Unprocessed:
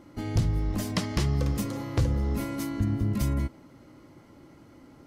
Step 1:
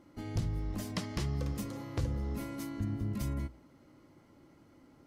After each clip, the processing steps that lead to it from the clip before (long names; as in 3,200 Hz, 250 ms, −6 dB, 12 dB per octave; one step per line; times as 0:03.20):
mains-hum notches 60/120 Hz
level −8 dB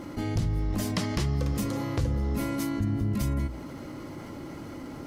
envelope flattener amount 50%
level +4.5 dB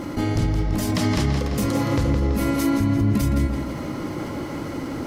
brickwall limiter −23 dBFS, peak gain reduction 6.5 dB
on a send: tape delay 168 ms, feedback 59%, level −3.5 dB, low-pass 6,000 Hz
on the sum: level +9 dB